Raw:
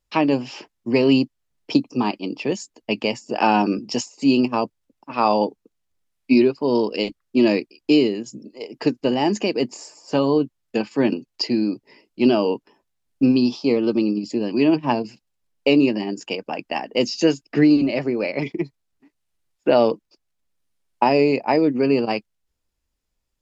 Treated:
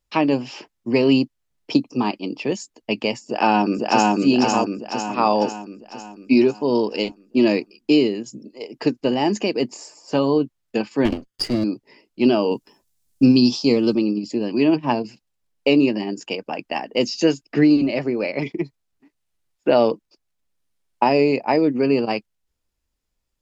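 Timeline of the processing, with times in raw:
0:03.24–0:04.14: delay throw 500 ms, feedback 55%, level 0 dB
0:11.05–0:11.64: lower of the sound and its delayed copy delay 0.61 ms
0:12.51–0:13.95: bass and treble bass +6 dB, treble +14 dB

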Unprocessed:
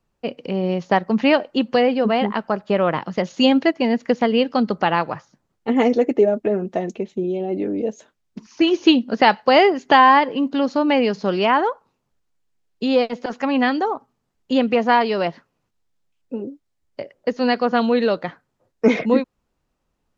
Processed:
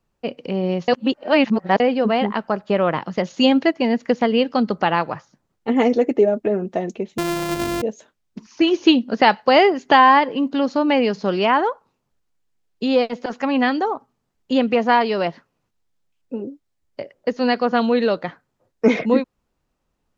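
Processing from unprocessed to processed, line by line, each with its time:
0:00.88–0:01.80: reverse
0:07.18–0:07.82: samples sorted by size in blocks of 128 samples

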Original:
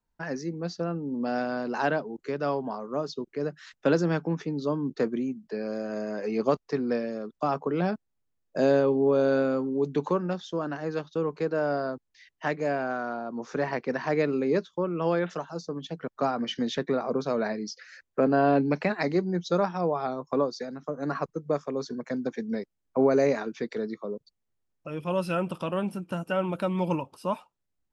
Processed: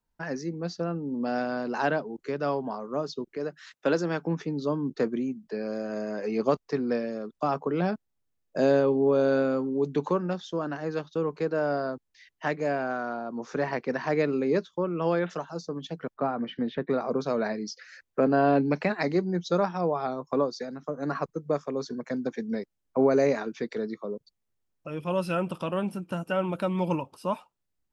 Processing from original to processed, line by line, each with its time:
0:03.37–0:04.25: high-pass filter 300 Hz 6 dB per octave
0:16.14–0:16.90: high-frequency loss of the air 440 metres

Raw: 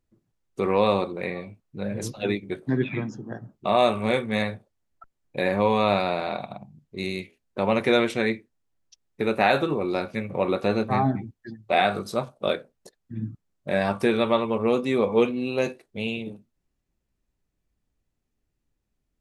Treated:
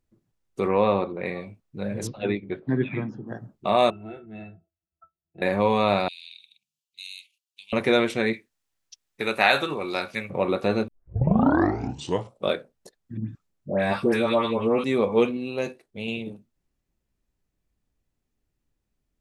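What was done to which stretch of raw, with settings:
0:00.68–0:01.26: low-pass filter 2,600 Hz
0:02.07–0:03.28: Bessel low-pass filter 2,900 Hz, order 4
0:03.90–0:05.42: resonances in every octave E, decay 0.13 s
0:06.08–0:07.73: elliptic high-pass filter 2,800 Hz, stop band 50 dB
0:08.33–0:10.30: tilt shelving filter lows −7 dB, about 870 Hz
0:10.88: tape start 1.60 s
0:13.17–0:14.84: all-pass dispersion highs, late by 121 ms, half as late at 1,300 Hz
0:15.37–0:16.08: clip gain −3.5 dB

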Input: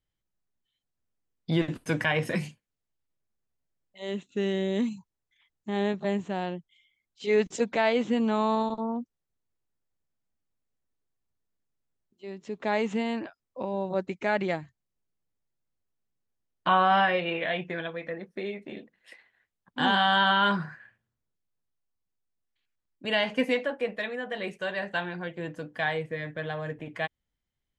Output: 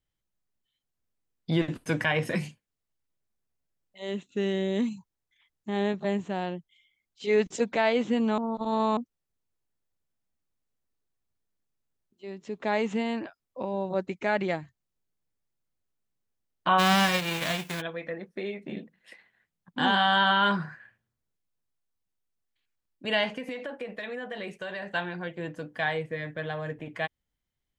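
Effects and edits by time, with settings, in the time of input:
0:08.38–0:08.97: reverse
0:16.78–0:17.80: spectral envelope flattened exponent 0.3
0:18.63–0:19.79: parametric band 170 Hz +11.5 dB
0:23.31–0:24.92: downward compressor 16 to 1, threshold −31 dBFS

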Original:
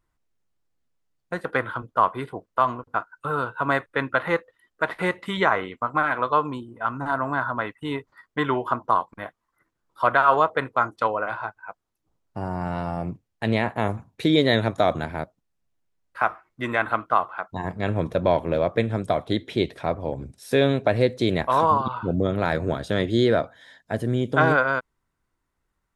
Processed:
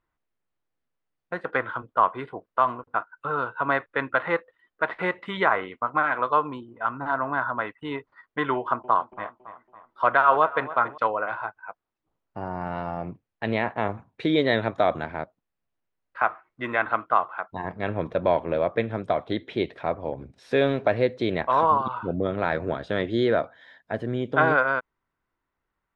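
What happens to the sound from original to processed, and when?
0:08.56–0:10.98: delay with a low-pass on its return 279 ms, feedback 48%, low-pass 3,300 Hz, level −16 dB
0:20.36–0:20.95: mu-law and A-law mismatch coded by mu
whole clip: low-pass filter 2,900 Hz 12 dB per octave; low-shelf EQ 240 Hz −8.5 dB

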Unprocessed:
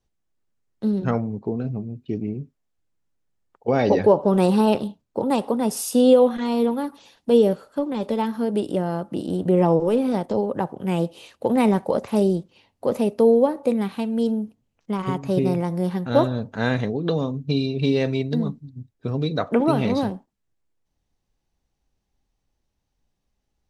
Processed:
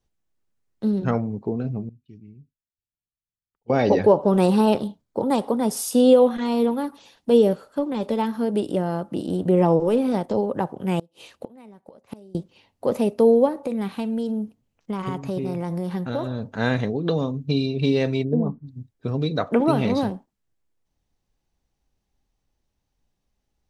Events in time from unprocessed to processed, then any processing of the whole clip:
0:01.89–0:03.70: guitar amp tone stack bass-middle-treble 6-0-2
0:04.73–0:05.91: notch filter 2,700 Hz, Q 8.6
0:10.99–0:12.35: gate with flip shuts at −19 dBFS, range −28 dB
0:13.48–0:16.59: downward compressor, threshold −22 dBFS
0:18.23–0:18.65: low-pass with resonance 360 Hz → 1,600 Hz, resonance Q 1.9

